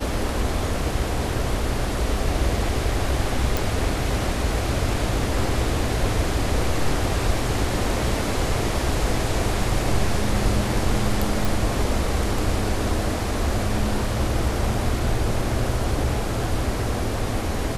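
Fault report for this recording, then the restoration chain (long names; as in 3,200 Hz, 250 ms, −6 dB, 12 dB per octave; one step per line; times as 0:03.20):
0:03.57: click
0:11.45: click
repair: click removal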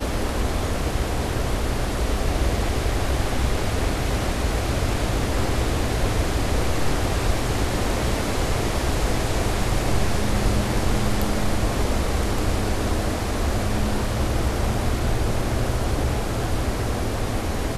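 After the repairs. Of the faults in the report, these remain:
none of them is left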